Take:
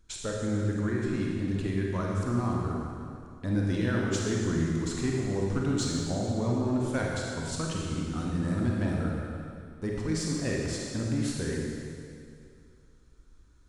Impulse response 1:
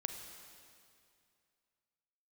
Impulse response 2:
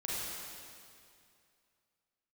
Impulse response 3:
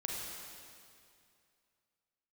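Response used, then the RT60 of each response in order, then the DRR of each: 3; 2.4, 2.4, 2.4 seconds; 5.0, −7.5, −2.5 decibels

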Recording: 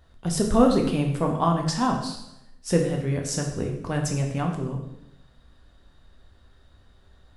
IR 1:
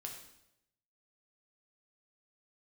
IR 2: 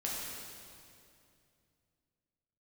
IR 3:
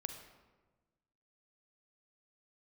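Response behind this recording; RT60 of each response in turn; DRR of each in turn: 1; 0.85, 2.5, 1.3 seconds; 0.5, −5.0, 6.0 decibels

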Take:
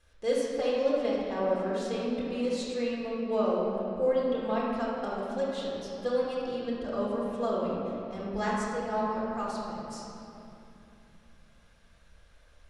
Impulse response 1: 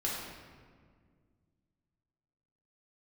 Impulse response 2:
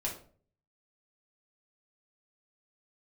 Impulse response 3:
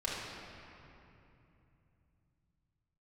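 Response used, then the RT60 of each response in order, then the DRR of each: 3; 1.9, 0.45, 2.9 seconds; −5.5, −3.5, −6.5 decibels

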